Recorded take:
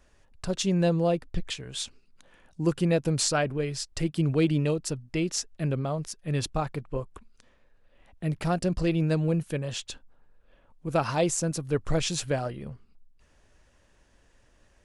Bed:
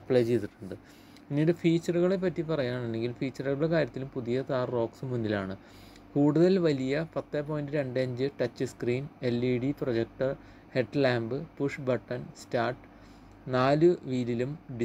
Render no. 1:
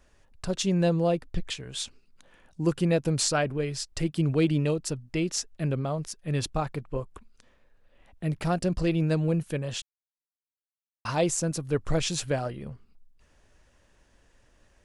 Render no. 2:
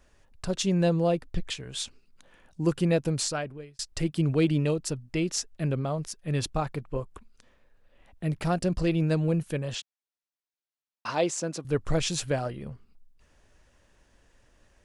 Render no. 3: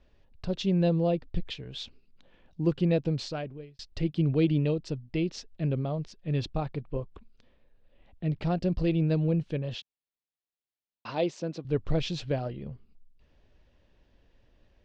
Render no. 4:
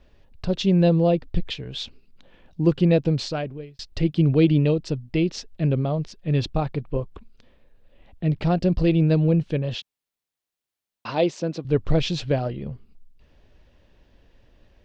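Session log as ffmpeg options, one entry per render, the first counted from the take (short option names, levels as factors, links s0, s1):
-filter_complex "[0:a]asplit=3[s0][s1][s2];[s0]atrim=end=9.82,asetpts=PTS-STARTPTS,afade=t=out:st=9.816:d=0.004:c=hsin[s3];[s1]atrim=start=9.82:end=11.05,asetpts=PTS-STARTPTS,volume=0[s4];[s2]atrim=start=11.05,asetpts=PTS-STARTPTS,afade=t=in:d=0.004:c=hsin[s5];[s3][s4][s5]concat=n=3:v=0:a=1"
-filter_complex "[0:a]asettb=1/sr,asplit=3[s0][s1][s2];[s0]atrim=end=9.754[s3];[s1]atrim=start=9.75:end=11.65,asetpts=PTS-STARTPTS,afade=t=in:d=0.004:c=qsin,afade=t=out:st=1.896:d=0.004:c=qsin,highpass=240,lowpass=6600[s4];[s2]atrim=start=11.646[s5];[s3][s4]acrossfade=d=0.004:c1=hsin:c2=qsin[s6];[s6][s5]acrossfade=d=0.004:c1=qsin:c2=hsin,asplit=2[s7][s8];[s7]atrim=end=3.79,asetpts=PTS-STARTPTS,afade=t=out:st=2.98:d=0.81[s9];[s8]atrim=start=3.79,asetpts=PTS-STARTPTS,afade=t=in:d=0.004:c=hsin[s10];[s9][s10]concat=n=2:v=0:a=1"
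-af "lowpass=f=4200:w=0.5412,lowpass=f=4200:w=1.3066,equalizer=f=1400:w=0.83:g=-9"
-af "volume=2.24"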